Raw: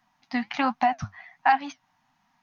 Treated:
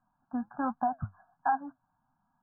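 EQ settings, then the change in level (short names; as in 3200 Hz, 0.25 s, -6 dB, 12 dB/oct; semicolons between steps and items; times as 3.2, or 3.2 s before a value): brick-wall FIR low-pass 1700 Hz; air absorption 480 m; low shelf 87 Hz +10 dB; -5.5 dB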